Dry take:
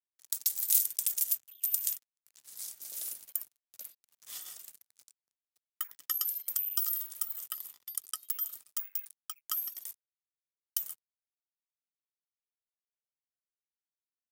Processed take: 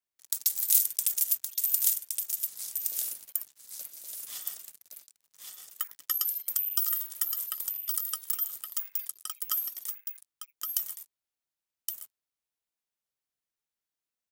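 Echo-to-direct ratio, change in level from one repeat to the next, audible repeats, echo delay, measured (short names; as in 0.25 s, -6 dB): -5.0 dB, no steady repeat, 1, 1.118 s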